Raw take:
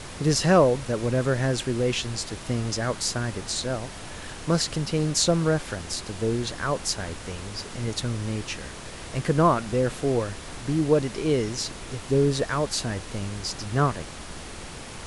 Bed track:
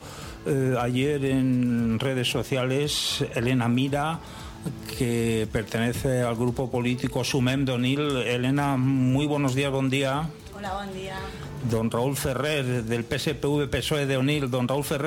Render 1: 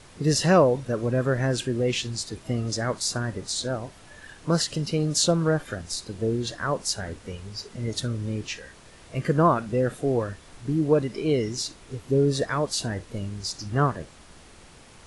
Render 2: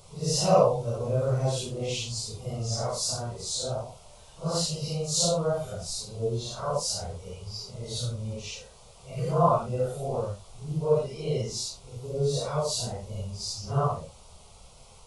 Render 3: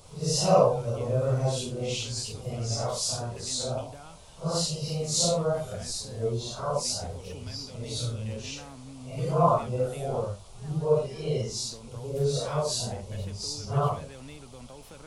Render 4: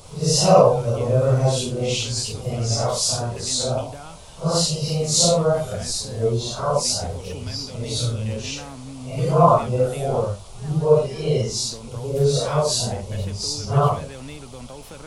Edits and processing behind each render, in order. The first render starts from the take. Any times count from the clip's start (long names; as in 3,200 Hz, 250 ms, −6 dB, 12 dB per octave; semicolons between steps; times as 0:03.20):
noise reduction from a noise print 11 dB
random phases in long frames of 200 ms; phaser with its sweep stopped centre 710 Hz, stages 4
mix in bed track −22 dB
level +8 dB; brickwall limiter −2 dBFS, peak gain reduction 2.5 dB